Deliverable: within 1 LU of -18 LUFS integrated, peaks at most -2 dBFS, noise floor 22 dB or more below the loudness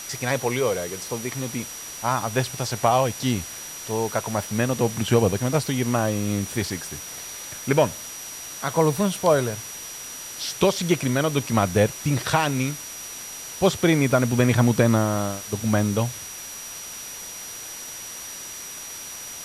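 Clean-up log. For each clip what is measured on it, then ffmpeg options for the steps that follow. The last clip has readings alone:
steady tone 5800 Hz; tone level -37 dBFS; noise floor -37 dBFS; noise floor target -47 dBFS; loudness -24.5 LUFS; peak -6.5 dBFS; loudness target -18.0 LUFS
-> -af "bandreject=f=5.8k:w=30"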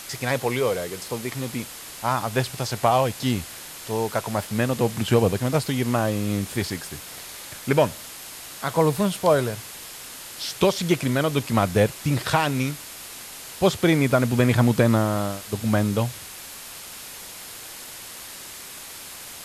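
steady tone none; noise floor -40 dBFS; noise floor target -46 dBFS
-> -af "afftdn=nr=6:nf=-40"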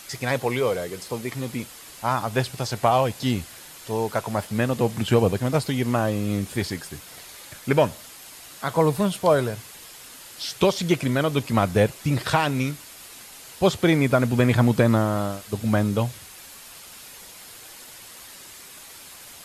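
noise floor -44 dBFS; noise floor target -46 dBFS
-> -af "afftdn=nr=6:nf=-44"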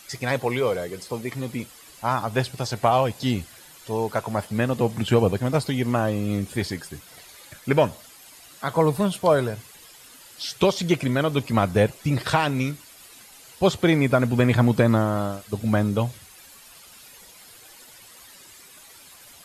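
noise floor -48 dBFS; loudness -23.5 LUFS; peak -6.5 dBFS; loudness target -18.0 LUFS
-> -af "volume=5.5dB,alimiter=limit=-2dB:level=0:latency=1"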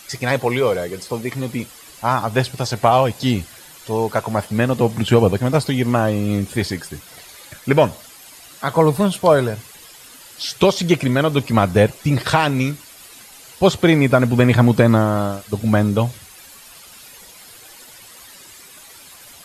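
loudness -18.0 LUFS; peak -2.0 dBFS; noise floor -43 dBFS

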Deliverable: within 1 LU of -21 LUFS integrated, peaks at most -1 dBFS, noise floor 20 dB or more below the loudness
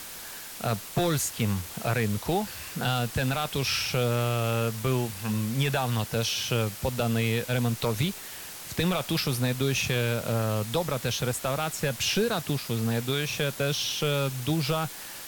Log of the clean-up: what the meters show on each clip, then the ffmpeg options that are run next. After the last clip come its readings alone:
noise floor -41 dBFS; noise floor target -48 dBFS; loudness -28.0 LUFS; peak -14.5 dBFS; loudness target -21.0 LUFS
-> -af "afftdn=nr=7:nf=-41"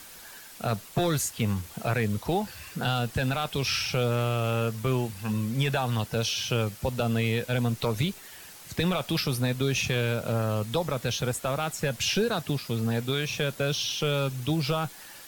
noise floor -47 dBFS; noise floor target -48 dBFS
-> -af "afftdn=nr=6:nf=-47"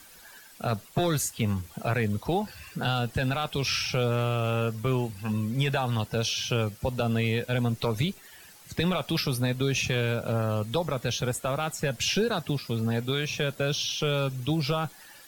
noise floor -51 dBFS; loudness -28.0 LUFS; peak -15.5 dBFS; loudness target -21.0 LUFS
-> -af "volume=7dB"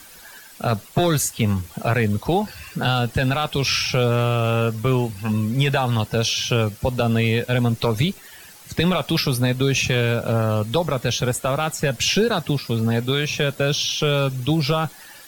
loudness -21.0 LUFS; peak -8.5 dBFS; noise floor -44 dBFS

